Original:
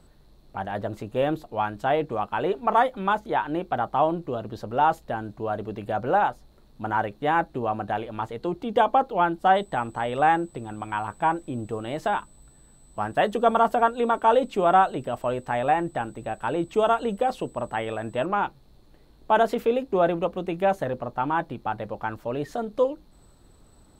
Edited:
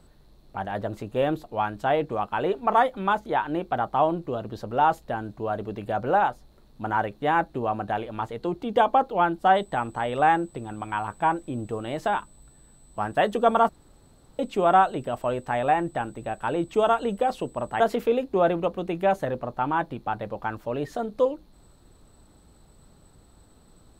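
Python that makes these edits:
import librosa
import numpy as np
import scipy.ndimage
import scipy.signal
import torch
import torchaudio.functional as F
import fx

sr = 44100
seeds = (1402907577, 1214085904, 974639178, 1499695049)

y = fx.edit(x, sr, fx.room_tone_fill(start_s=13.69, length_s=0.7),
    fx.cut(start_s=17.8, length_s=1.59), tone=tone)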